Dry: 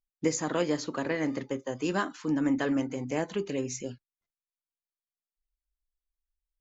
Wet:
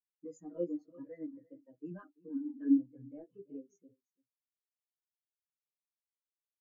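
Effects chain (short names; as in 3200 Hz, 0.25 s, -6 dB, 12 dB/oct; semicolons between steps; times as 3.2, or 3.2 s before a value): comb 6.4 ms, depth 39%; sample leveller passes 2; chorus voices 2, 0.51 Hz, delay 14 ms, depth 3.3 ms; echo 0.338 s -10 dB; spectral expander 2.5:1; gain -5 dB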